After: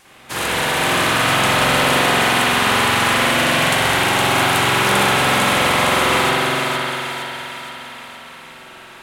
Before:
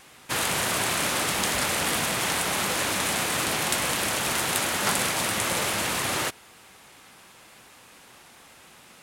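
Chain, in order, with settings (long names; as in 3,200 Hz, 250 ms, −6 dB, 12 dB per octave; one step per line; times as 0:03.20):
echo with a time of its own for lows and highs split 670 Hz, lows 217 ms, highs 465 ms, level −4 dB
0:04.17–0:04.60: surface crackle 53 per second −34 dBFS
spring reverb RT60 2.9 s, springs 45 ms, chirp 20 ms, DRR −9.5 dB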